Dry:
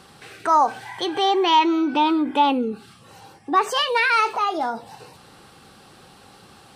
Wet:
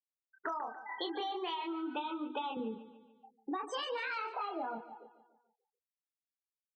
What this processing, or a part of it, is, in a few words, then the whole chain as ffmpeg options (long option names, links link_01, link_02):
serial compression, leveller first: -filter_complex "[0:a]asettb=1/sr,asplit=3[link_01][link_02][link_03];[link_01]atrim=end=1.204[link_04];[link_02]atrim=start=1.2:end=2.57,asetpts=PTS-STARTPTS,afade=type=in:duration=0.004:curve=qsin,afade=type=out:start_time=1.366:duration=0.004:curve=qsin,highpass=430[link_05];[link_03]atrim=start=2.566[link_06];[link_04][link_05]acrossfade=duration=0.004:curve1=hsin:curve2=qsin[link_07];[link_07][link_06]acrossfade=duration=0.004:curve1=qsin:curve2=hsin,afftfilt=real='re*gte(hypot(re,im),0.0562)':imag='im*gte(hypot(re,im),0.0562)':win_size=1024:overlap=0.75,asplit=2[link_08][link_09];[link_09]adelay=27,volume=-3dB[link_10];[link_08][link_10]amix=inputs=2:normalize=0,acompressor=threshold=-17dB:ratio=6,acompressor=threshold=-28dB:ratio=10,aecho=1:1:145|290|435|580|725:0.178|0.0907|0.0463|0.0236|0.012,volume=-7dB"